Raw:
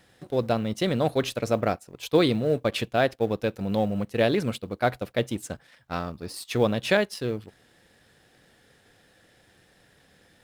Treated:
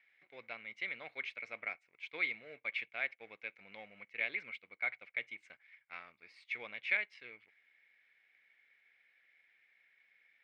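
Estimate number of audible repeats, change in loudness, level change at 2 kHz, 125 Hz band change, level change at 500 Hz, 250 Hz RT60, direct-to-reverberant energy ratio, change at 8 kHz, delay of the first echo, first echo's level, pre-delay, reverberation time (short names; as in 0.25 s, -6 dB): none, -13.5 dB, -4.0 dB, under -40 dB, -28.5 dB, none, none, under -30 dB, none, none, none, none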